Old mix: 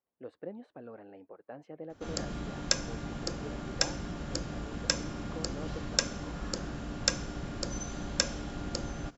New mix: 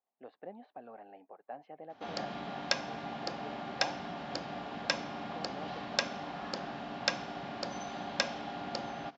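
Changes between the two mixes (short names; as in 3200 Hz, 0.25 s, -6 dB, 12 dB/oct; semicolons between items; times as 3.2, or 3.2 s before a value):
background +3.0 dB; master: add speaker cabinet 280–4300 Hz, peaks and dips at 330 Hz -8 dB, 490 Hz -7 dB, 760 Hz +9 dB, 1400 Hz -4 dB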